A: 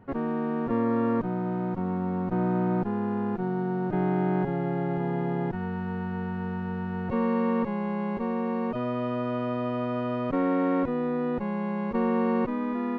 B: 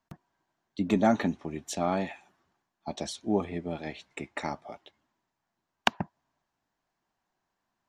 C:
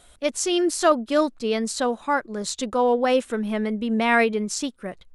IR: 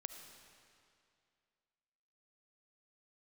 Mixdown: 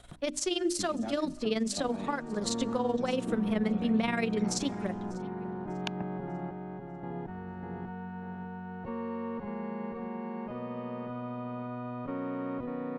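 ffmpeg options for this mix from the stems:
-filter_complex "[0:a]equalizer=f=760:w=1.5:g=2,adelay=1750,volume=0.316,asplit=3[s0][s1][s2];[s0]atrim=end=6.51,asetpts=PTS-STARTPTS,afade=t=out:st=6.506:d=0.004:c=hsin[s3];[s1]atrim=start=6.51:end=7.03,asetpts=PTS-STARTPTS,volume=0[s4];[s2]atrim=start=7.03,asetpts=PTS-STARTPTS,afade=t=in:d=0.004:c=hsin[s5];[s3][s4][s5]concat=n=3:v=0:a=1,asplit=2[s6][s7];[s7]volume=0.562[s8];[1:a]acompressor=threshold=0.0355:ratio=6,aeval=exprs='val(0)+0.00126*(sin(2*PI*60*n/s)+sin(2*PI*2*60*n/s)/2+sin(2*PI*3*60*n/s)/3+sin(2*PI*4*60*n/s)/4+sin(2*PI*5*60*n/s)/5)':c=same,volume=0.794[s9];[2:a]tremolo=f=21:d=0.75,bandreject=f=50:t=h:w=6,bandreject=f=100:t=h:w=6,bandreject=f=150:t=h:w=6,bandreject=f=200:t=h:w=6,bandreject=f=250:t=h:w=6,bandreject=f=300:t=h:w=6,bandreject=f=350:t=h:w=6,alimiter=limit=0.15:level=0:latency=1:release=91,volume=1.19,asplit=4[s10][s11][s12][s13];[s11]volume=0.211[s14];[s12]volume=0.0708[s15];[s13]apad=whole_len=347510[s16];[s9][s16]sidechaincompress=threshold=0.0282:ratio=8:attack=16:release=100[s17];[3:a]atrim=start_sample=2205[s18];[s14][s18]afir=irnorm=-1:irlink=0[s19];[s8][s15]amix=inputs=2:normalize=0,aecho=0:1:595|1190|1785|2380|2975:1|0.33|0.109|0.0359|0.0119[s20];[s6][s17][s10][s19][s20]amix=inputs=5:normalize=0,highshelf=f=7100:g=-11,acrossover=split=250|3000[s21][s22][s23];[s22]acompressor=threshold=0.0158:ratio=2[s24];[s21][s24][s23]amix=inputs=3:normalize=0"

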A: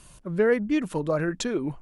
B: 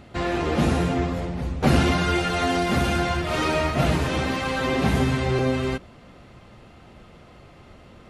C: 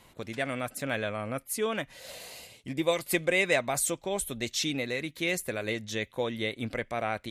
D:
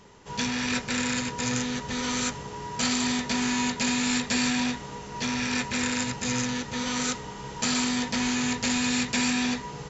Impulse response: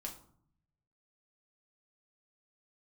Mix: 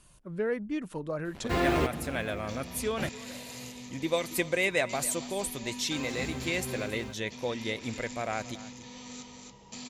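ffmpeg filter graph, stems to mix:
-filter_complex "[0:a]acontrast=50,volume=0.188,asplit=2[s0][s1];[1:a]acrusher=bits=6:mix=0:aa=0.5,adelay=1350,volume=0.841,asplit=3[s2][s3][s4];[s2]atrim=end=3.09,asetpts=PTS-STARTPTS,afade=t=out:st=3.086:d=0.004:c=hsin[s5];[s3]atrim=start=3.09:end=5.91,asetpts=PTS-STARTPTS,volume=0[s6];[s4]atrim=start=5.91,asetpts=PTS-STARTPTS,afade=t=in:d=0.004:c=hsin[s7];[s5][s6][s7]concat=n=3:v=0:a=1[s8];[2:a]adelay=1250,volume=0.794,asplit=2[s9][s10];[s10]volume=0.133[s11];[3:a]equalizer=f=1500:w=3.4:g=-14.5,adelay=2100,volume=0.15,asplit=2[s12][s13];[s13]volume=0.631[s14];[s1]apad=whole_len=416387[s15];[s8][s15]sidechaingate=range=0.158:threshold=0.002:ratio=16:detection=peak[s16];[s11][s14]amix=inputs=2:normalize=0,aecho=0:1:275:1[s17];[s0][s16][s9][s12][s17]amix=inputs=5:normalize=0"

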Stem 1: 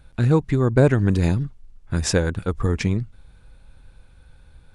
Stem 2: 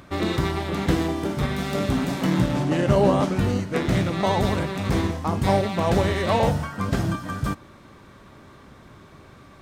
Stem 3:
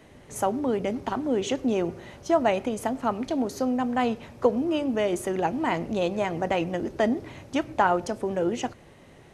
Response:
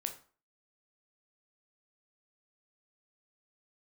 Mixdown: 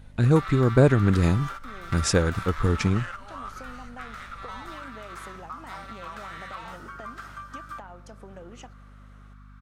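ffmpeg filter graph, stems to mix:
-filter_complex "[0:a]volume=0.841,asplit=2[s0][s1];[1:a]highpass=f=1300:t=q:w=7.3,adelay=250,volume=1[s2];[2:a]equalizer=f=340:w=1.5:g=-6.5,acompressor=threshold=0.0251:ratio=6,volume=0.335[s3];[s1]apad=whole_len=434956[s4];[s2][s4]sidechaingate=range=0.158:threshold=0.0126:ratio=16:detection=peak[s5];[s5][s3]amix=inputs=2:normalize=0,aeval=exprs='val(0)+0.00447*(sin(2*PI*50*n/s)+sin(2*PI*2*50*n/s)/2+sin(2*PI*3*50*n/s)/3+sin(2*PI*4*50*n/s)/4+sin(2*PI*5*50*n/s)/5)':c=same,acompressor=threshold=0.0224:ratio=16,volume=1[s6];[s0][s6]amix=inputs=2:normalize=0"

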